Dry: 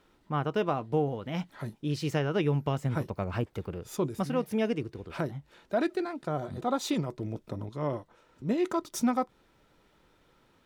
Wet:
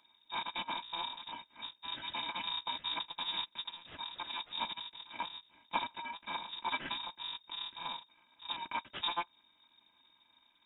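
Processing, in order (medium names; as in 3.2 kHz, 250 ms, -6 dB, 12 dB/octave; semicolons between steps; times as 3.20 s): bit-reversed sample order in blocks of 256 samples; frequency inversion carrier 3.7 kHz; trim +1 dB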